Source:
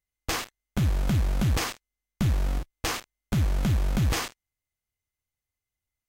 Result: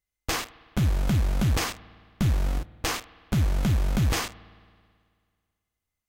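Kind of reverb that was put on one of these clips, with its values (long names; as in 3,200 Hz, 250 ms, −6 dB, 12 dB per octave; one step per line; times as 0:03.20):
spring reverb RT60 2 s, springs 54 ms, chirp 25 ms, DRR 18.5 dB
level +1 dB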